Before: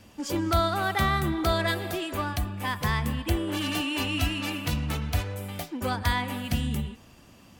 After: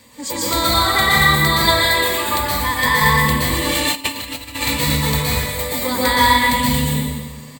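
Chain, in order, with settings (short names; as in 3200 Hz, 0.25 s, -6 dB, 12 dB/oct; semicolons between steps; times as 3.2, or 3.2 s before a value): ripple EQ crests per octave 1, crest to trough 12 dB; echo 0.115 s -11 dB; plate-style reverb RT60 1.5 s, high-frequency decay 0.8×, pre-delay 0.11 s, DRR -6.5 dB; 3.92–4.62 negative-ratio compressor -28 dBFS, ratio -0.5; tilt +2 dB/oct; gain +3.5 dB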